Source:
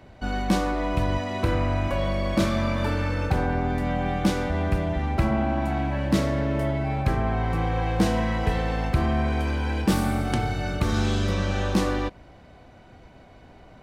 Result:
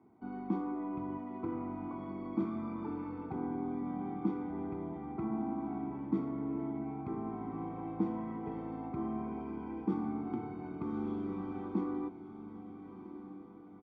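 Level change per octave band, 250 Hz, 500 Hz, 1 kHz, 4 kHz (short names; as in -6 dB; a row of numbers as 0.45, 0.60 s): -8.5 dB, -14.5 dB, -14.5 dB, under -35 dB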